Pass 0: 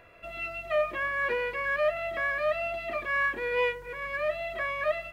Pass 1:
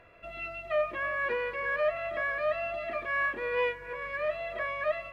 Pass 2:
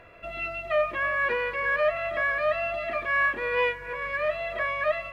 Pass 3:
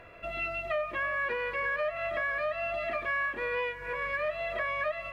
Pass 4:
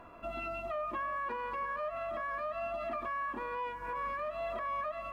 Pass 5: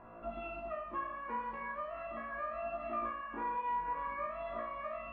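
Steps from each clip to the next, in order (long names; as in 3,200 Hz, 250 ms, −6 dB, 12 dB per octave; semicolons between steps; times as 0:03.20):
low-pass filter 3,600 Hz 6 dB per octave; delay that swaps between a low-pass and a high-pass 324 ms, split 1,500 Hz, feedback 51%, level −13 dB; level −1.5 dB
dynamic equaliser 380 Hz, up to −4 dB, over −43 dBFS, Q 0.84; level +6 dB
downward compressor, threshold −29 dBFS, peak gain reduction 9 dB
octave-band graphic EQ 125/250/500/1,000/2,000/4,000 Hz −7/+10/−8/+11/−12/−4 dB; brickwall limiter −29 dBFS, peak gain reduction 6.5 dB; level −1 dB
low-pass filter 1,800 Hz 12 dB per octave; on a send: flutter between parallel walls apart 3 metres, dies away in 0.62 s; on the sum: level −3.5 dB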